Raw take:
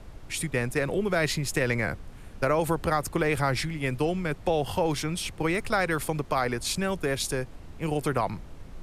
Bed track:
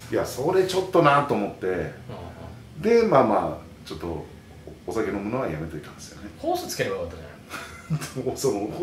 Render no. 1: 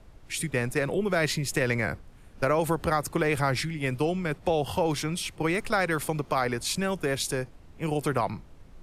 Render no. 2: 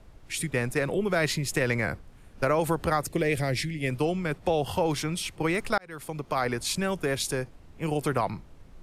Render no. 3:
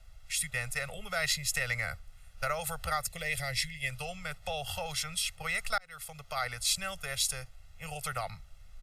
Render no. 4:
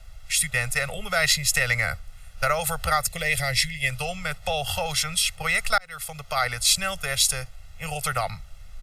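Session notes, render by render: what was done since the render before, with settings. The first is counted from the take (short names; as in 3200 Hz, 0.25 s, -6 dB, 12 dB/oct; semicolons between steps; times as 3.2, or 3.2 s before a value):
noise print and reduce 7 dB
3.06–3.9 band shelf 1100 Hz -12.5 dB 1.1 oct; 5.78–6.47 fade in
passive tone stack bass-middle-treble 10-0-10; comb 1.5 ms, depth 86%
gain +9.5 dB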